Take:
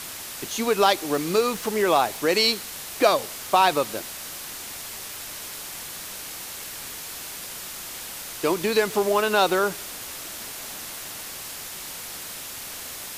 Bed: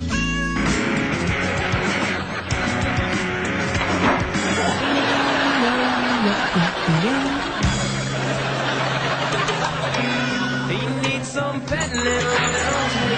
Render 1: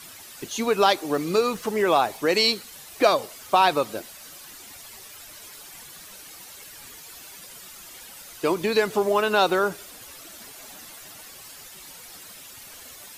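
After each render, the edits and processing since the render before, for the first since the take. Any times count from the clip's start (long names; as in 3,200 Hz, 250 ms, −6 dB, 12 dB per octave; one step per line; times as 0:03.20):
broadband denoise 11 dB, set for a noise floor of −37 dBFS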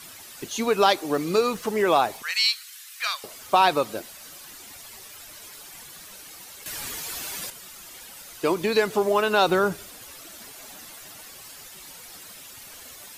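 0:02.22–0:03.24: high-pass filter 1,400 Hz 24 dB per octave
0:06.66–0:07.50: clip gain +9.5 dB
0:09.47–0:09.89: bass and treble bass +8 dB, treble 0 dB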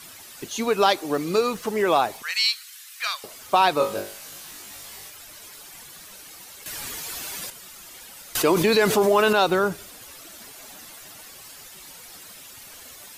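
0:03.78–0:05.10: flutter between parallel walls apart 3.4 metres, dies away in 0.35 s
0:08.35–0:09.33: envelope flattener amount 70%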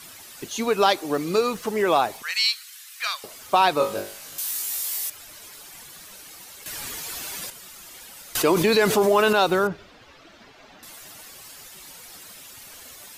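0:04.38–0:05.10: RIAA equalisation recording
0:09.67–0:10.83: high-frequency loss of the air 220 metres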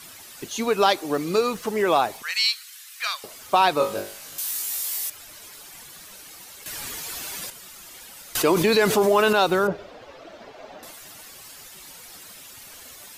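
0:09.68–0:10.91: parametric band 570 Hz +12.5 dB 1.4 octaves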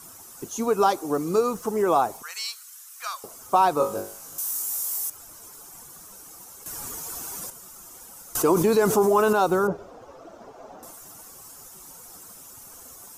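flat-topped bell 2,800 Hz −13 dB
notch filter 600 Hz, Q 12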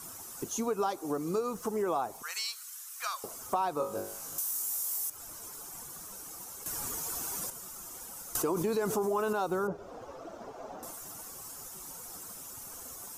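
downward compressor 2.5 to 1, threshold −33 dBFS, peak gain reduction 12 dB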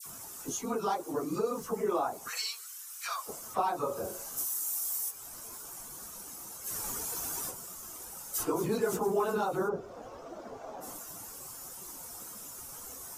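random phases in long frames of 50 ms
all-pass dispersion lows, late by 57 ms, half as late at 1,700 Hz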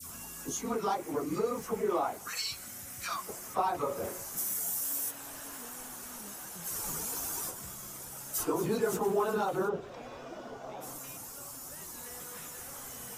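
mix in bed −31.5 dB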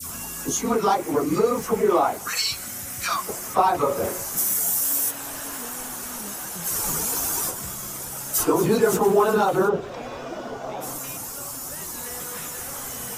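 level +11 dB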